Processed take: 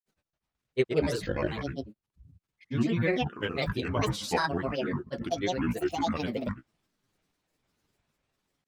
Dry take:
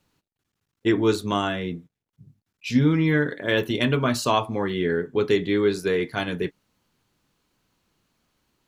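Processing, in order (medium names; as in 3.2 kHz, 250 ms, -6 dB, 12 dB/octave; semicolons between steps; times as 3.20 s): pitch bend over the whole clip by -4 st ending unshifted; flange 0.83 Hz, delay 8.7 ms, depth 5 ms, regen +39%; granulator, pitch spread up and down by 12 st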